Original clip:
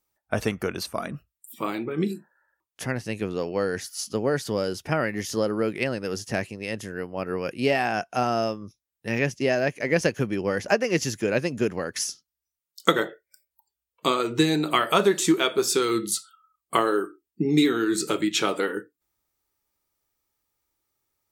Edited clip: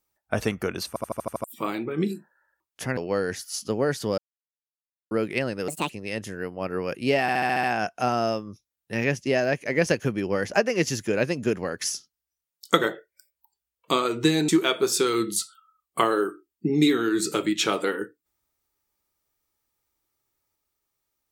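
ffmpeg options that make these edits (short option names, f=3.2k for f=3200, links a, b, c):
-filter_complex "[0:a]asplit=20[a][b][c][d][e][f][g][h][i][j][k][l][m][n][o][p][q][r][s][t];[a]atrim=end=0.962[u];[b]atrim=start=0.878:end=0.962[v];[c]atrim=start=0.878:end=0.962[w];[d]atrim=start=0.878:end=0.962[x];[e]atrim=start=0.878:end=0.962[y];[f]atrim=start=0.878:end=0.962[z];[g]atrim=start=0.878:end=0.962[aa];[h]atrim=start=1.438:end=2.972[ab];[i]atrim=start=3.418:end=4.63,asetpts=PTS-STARTPTS,afade=t=out:st=1.208:d=0.004:c=hsin[ac];[j]atrim=start=4.63:end=5.56,asetpts=PTS-STARTPTS,volume=0[ad];[k]atrim=start=5.56:end=6.134,asetpts=PTS-STARTPTS,afade=t=in:d=0.004:c=hsin[ae];[l]atrim=start=6.13:end=6.46,asetpts=PTS-STARTPTS,asetrate=67914,aresample=44100[af];[m]atrim=start=6.456:end=7.852[ag];[n]atrim=start=7.778:end=7.852[ah];[o]atrim=start=7.778:end=7.852[ai];[p]atrim=start=7.778:end=7.852[aj];[q]atrim=start=7.778:end=7.852[ak];[r]atrim=start=7.778:end=7.852[al];[s]atrim=start=7.778:end=14.632[am];[t]atrim=start=15.238[an];[u][v]acrossfade=d=0.004:c1=hsin:c2=hsin[ao];[ao][w]acrossfade=d=0.004:c1=hsin:c2=hsin[ap];[ap][x]acrossfade=d=0.004:c1=hsin:c2=hsin[aq];[aq][y]acrossfade=d=0.004:c1=hsin:c2=hsin[ar];[ar][z]acrossfade=d=0.004:c1=hsin:c2=hsin[as];[as][aa]acrossfade=d=0.004:c1=hsin:c2=hsin[at];[at][ab]acrossfade=d=0.004:c1=hsin:c2=hsin[au];[ac][ad][ae]concat=n=3:v=0:a=1[av];[au][av]acrossfade=d=0.004:c1=hsin:c2=hsin[aw];[aw][af]acrossfade=d=0.004:c1=hsin:c2=hsin[ax];[ax][ag]acrossfade=d=0.004:c1=hsin:c2=hsin[ay];[ay][ah]acrossfade=d=0.004:c1=hsin:c2=hsin[az];[az][ai]acrossfade=d=0.004:c1=hsin:c2=hsin[ba];[ba][aj]acrossfade=d=0.004:c1=hsin:c2=hsin[bb];[bb][ak]acrossfade=d=0.004:c1=hsin:c2=hsin[bc];[bc][al]acrossfade=d=0.004:c1=hsin:c2=hsin[bd];[bd][am]acrossfade=d=0.004:c1=hsin:c2=hsin[be];[be][an]acrossfade=d=0.004:c1=hsin:c2=hsin"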